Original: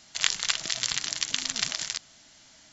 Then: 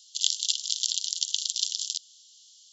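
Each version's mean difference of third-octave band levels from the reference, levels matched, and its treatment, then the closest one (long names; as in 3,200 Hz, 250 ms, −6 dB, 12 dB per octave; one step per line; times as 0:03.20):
15.5 dB: Butterworth high-pass 3,000 Hz 96 dB per octave
level +1.5 dB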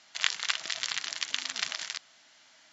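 4.0 dB: resonant band-pass 1,600 Hz, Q 0.54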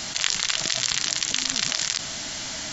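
6.5 dB: envelope flattener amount 70%
level −2 dB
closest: second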